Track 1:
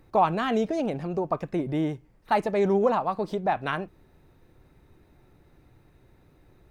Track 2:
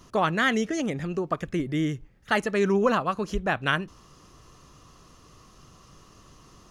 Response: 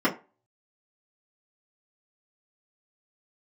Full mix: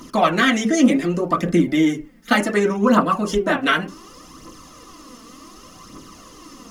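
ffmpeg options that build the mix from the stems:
-filter_complex "[0:a]equalizer=f=2300:t=o:w=0.77:g=8,volume=0.891[s0];[1:a]acompressor=threshold=0.0501:ratio=2,volume=-1,volume=1.12,asplit=2[s1][s2];[s2]volume=0.316[s3];[2:a]atrim=start_sample=2205[s4];[s3][s4]afir=irnorm=-1:irlink=0[s5];[s0][s1][s5]amix=inputs=3:normalize=0,highshelf=f=3800:g=11.5,aphaser=in_gain=1:out_gain=1:delay=4.6:decay=0.5:speed=0.67:type=triangular"

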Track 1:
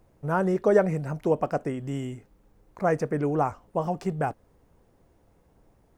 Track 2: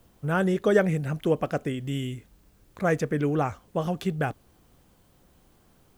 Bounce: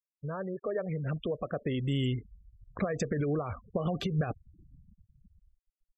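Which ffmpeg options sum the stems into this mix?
-filter_complex "[0:a]volume=0.168,asplit=2[s0][s1];[1:a]dynaudnorm=f=330:g=7:m=6.68,alimiter=limit=0.251:level=0:latency=1:release=44,adelay=1.5,volume=0.531[s2];[s1]apad=whole_len=263429[s3];[s2][s3]sidechaincompress=threshold=0.00631:ratio=8:attack=6.4:release=150[s4];[s0][s4]amix=inputs=2:normalize=0,afftfilt=real='re*gte(hypot(re,im),0.0126)':imag='im*gte(hypot(re,im),0.0126)':win_size=1024:overlap=0.75"

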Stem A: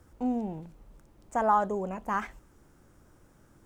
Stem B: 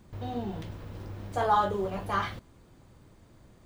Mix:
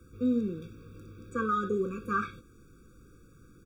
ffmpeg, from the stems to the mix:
-filter_complex "[0:a]volume=1.33[s0];[1:a]flanger=delay=17.5:depth=2.2:speed=1.6,adelay=1.4,volume=0.794[s1];[s0][s1]amix=inputs=2:normalize=0,acrossover=split=140|3900[s2][s3][s4];[s2]acompressor=threshold=0.00251:ratio=4[s5];[s3]acompressor=threshold=0.141:ratio=4[s6];[s4]acompressor=threshold=0.00126:ratio=4[s7];[s5][s6][s7]amix=inputs=3:normalize=0,afftfilt=real='re*eq(mod(floor(b*sr/1024/550),2),0)':imag='im*eq(mod(floor(b*sr/1024/550),2),0)':win_size=1024:overlap=0.75"

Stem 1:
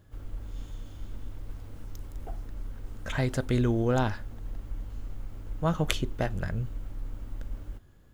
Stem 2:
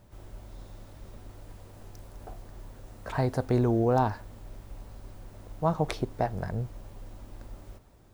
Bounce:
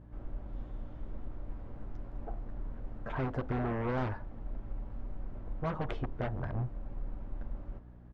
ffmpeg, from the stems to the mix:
-filter_complex "[0:a]volume=0.708[s0];[1:a]aeval=exprs='0.0335*(abs(mod(val(0)/0.0335+3,4)-2)-1)':c=same,adelay=9.3,volume=0.75,asplit=2[s1][s2];[s2]apad=whole_len=358704[s3];[s0][s3]sidechaincompress=threshold=0.01:ratio=8:attack=16:release=650[s4];[s4][s1]amix=inputs=2:normalize=0,lowpass=1600,aeval=exprs='val(0)+0.00282*(sin(2*PI*60*n/s)+sin(2*PI*2*60*n/s)/2+sin(2*PI*3*60*n/s)/3+sin(2*PI*4*60*n/s)/4+sin(2*PI*5*60*n/s)/5)':c=same"

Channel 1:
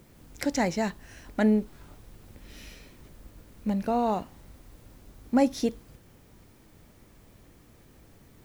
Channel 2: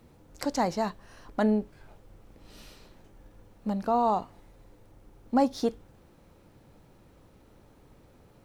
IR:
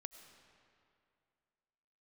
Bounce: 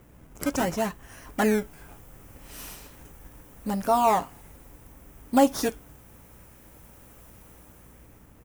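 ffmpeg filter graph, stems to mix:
-filter_complex "[0:a]aeval=exprs='val(0)+0.00178*(sin(2*PI*60*n/s)+sin(2*PI*2*60*n/s)/2+sin(2*PI*3*60*n/s)/3+sin(2*PI*4*60*n/s)/4+sin(2*PI*5*60*n/s)/5)':c=same,acrusher=samples=17:mix=1:aa=0.000001:lfo=1:lforange=17:lforate=0.72,volume=0.944[s0];[1:a]dynaudnorm=f=310:g=7:m=4.22,highpass=f=1200:p=1,aemphasis=mode=production:type=50kf,adelay=8.3,volume=0.708[s1];[s0][s1]amix=inputs=2:normalize=0,equalizer=f=4200:t=o:w=0.66:g=-10.5"

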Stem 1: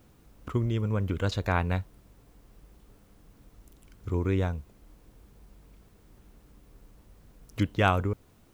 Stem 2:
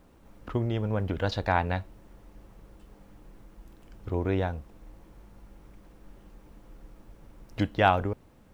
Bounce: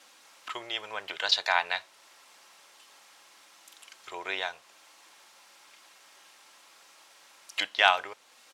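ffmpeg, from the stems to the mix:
-filter_complex "[0:a]aecho=1:1:3.7:0.91,acompressor=threshold=0.00891:ratio=2,volume=0.891[s0];[1:a]volume=-1,volume=0.841[s1];[s0][s1]amix=inputs=2:normalize=0,crystalizer=i=8.5:c=0,highpass=760,lowpass=5000"

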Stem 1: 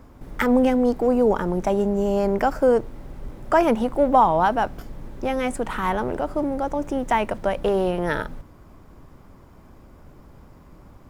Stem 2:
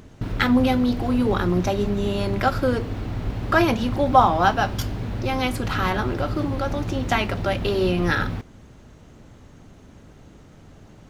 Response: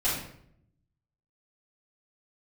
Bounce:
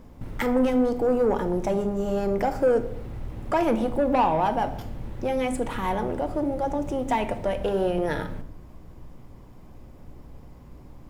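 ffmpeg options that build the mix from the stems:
-filter_complex "[0:a]equalizer=f=1400:w=2.6:g=-8,asoftclip=type=tanh:threshold=0.211,volume=0.75,asplit=3[s0][s1][s2];[s1]volume=0.141[s3];[1:a]aeval=exprs='val(0)+0.0141*(sin(2*PI*60*n/s)+sin(2*PI*2*60*n/s)/2+sin(2*PI*3*60*n/s)/3+sin(2*PI*4*60*n/s)/4+sin(2*PI*5*60*n/s)/5)':c=same,lowpass=3300,volume=0.237[s4];[s2]apad=whole_len=489076[s5];[s4][s5]sidechaincompress=threshold=0.0282:ratio=8:attack=16:release=159[s6];[2:a]atrim=start_sample=2205[s7];[s3][s7]afir=irnorm=-1:irlink=0[s8];[s0][s6][s8]amix=inputs=3:normalize=0"

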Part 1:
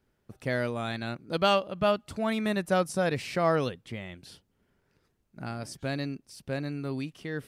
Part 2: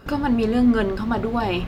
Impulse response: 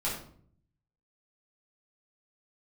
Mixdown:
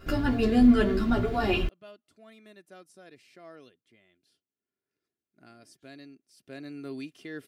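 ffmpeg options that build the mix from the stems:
-filter_complex "[0:a]highpass=190,volume=0.668,afade=t=in:st=4.63:d=0.49:silence=0.421697,afade=t=in:st=6.3:d=0.56:silence=0.298538[s0];[1:a]asplit=2[s1][s2];[s2]adelay=10.4,afreqshift=1.9[s3];[s1][s3]amix=inputs=2:normalize=1,volume=1,asplit=2[s4][s5];[s5]volume=0.188[s6];[2:a]atrim=start_sample=2205[s7];[s6][s7]afir=irnorm=-1:irlink=0[s8];[s0][s4][s8]amix=inputs=3:normalize=0,equalizer=f=910:t=o:w=0.77:g=-8.5,aecho=1:1:2.9:0.43"

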